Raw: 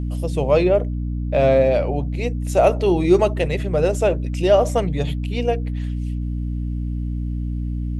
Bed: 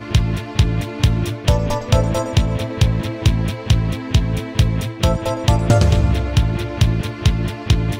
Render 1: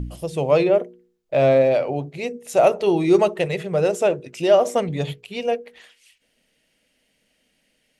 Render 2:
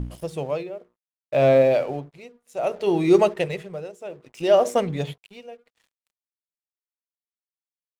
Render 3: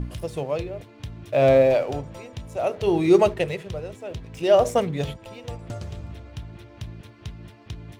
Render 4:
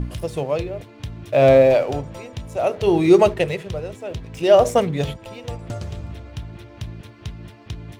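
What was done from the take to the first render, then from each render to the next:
de-hum 60 Hz, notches 8
crossover distortion -45 dBFS; tremolo 0.63 Hz, depth 89%
add bed -21 dB
trim +4 dB; peak limiter -3 dBFS, peak gain reduction 2.5 dB

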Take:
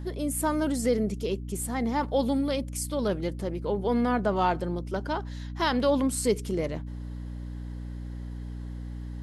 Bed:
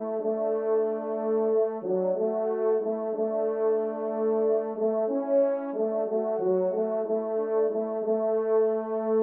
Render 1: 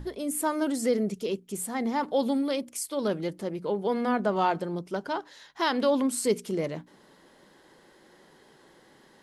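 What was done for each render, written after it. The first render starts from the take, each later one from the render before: hum notches 60/120/180/240/300 Hz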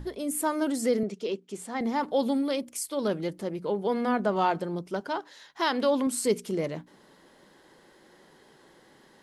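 1.03–1.81 s: band-pass 240–5900 Hz; 5.00–6.07 s: high-pass 160 Hz 6 dB/octave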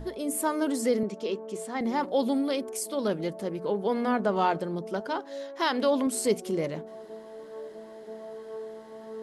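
add bed -15.5 dB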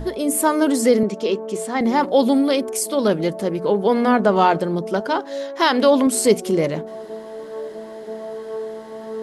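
trim +10 dB; peak limiter -3 dBFS, peak gain reduction 1 dB

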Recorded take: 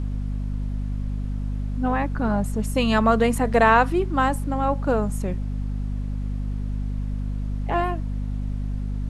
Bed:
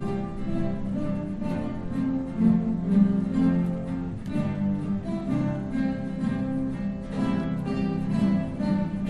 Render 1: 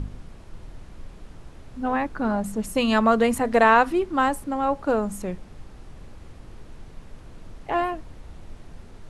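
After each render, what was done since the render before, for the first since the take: de-hum 50 Hz, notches 5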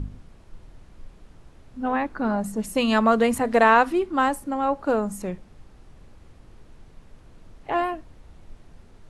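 noise print and reduce 6 dB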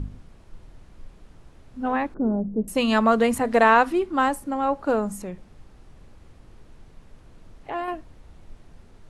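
2.14–2.68 s: resonant low-pass 400 Hz, resonance Q 1.7; 5.19–7.88 s: compression 1.5:1, threshold -36 dBFS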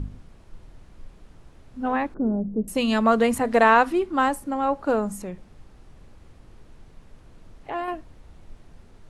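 2.18–3.05 s: dynamic bell 1.1 kHz, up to -6 dB, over -35 dBFS, Q 0.84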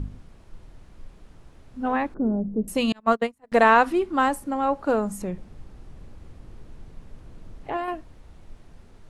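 2.92–3.52 s: gate -18 dBFS, range -39 dB; 5.21–7.77 s: bass shelf 500 Hz +5.5 dB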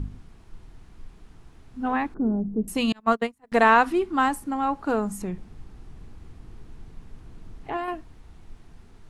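peaking EQ 560 Hz -11 dB 0.26 oct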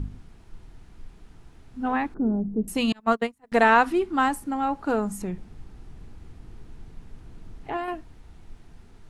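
band-stop 1.1 kHz, Q 17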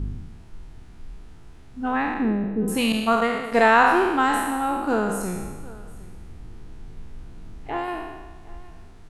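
spectral sustain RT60 1.26 s; delay 758 ms -21.5 dB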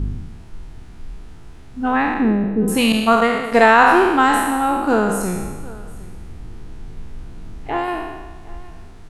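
trim +6 dB; peak limiter -1 dBFS, peak gain reduction 3 dB

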